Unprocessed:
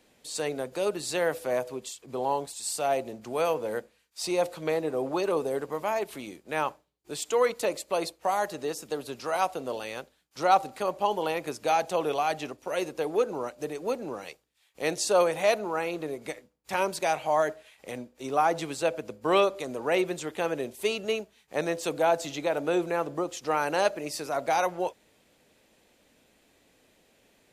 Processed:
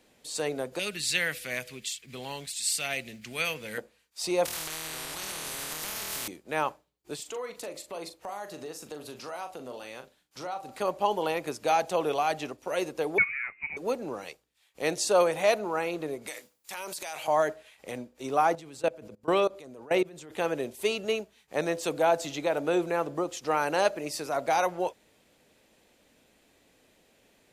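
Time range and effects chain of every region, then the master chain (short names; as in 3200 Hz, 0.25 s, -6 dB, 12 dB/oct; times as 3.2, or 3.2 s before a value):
0.79–3.78 EQ curve 200 Hz 0 dB, 330 Hz -10 dB, 940 Hz -14 dB, 2100 Hz +11 dB, 6500 Hz +4 dB + companded quantiser 8-bit
4.45–6.28 flutter echo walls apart 4.3 m, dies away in 0.83 s + compressor 4:1, threshold -30 dBFS + spectral compressor 10:1
7.15–10.69 compressor 2.5:1, threshold -40 dBFS + doubler 40 ms -8.5 dB
13.18–13.77 inverted band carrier 2700 Hz + three-band expander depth 40%
16.27–17.28 tilt +3.5 dB/oct + compressor 12:1, threshold -32 dBFS + transient shaper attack -5 dB, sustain +5 dB
18.55–20.32 low shelf 480 Hz +4 dB + level quantiser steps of 23 dB
whole clip: dry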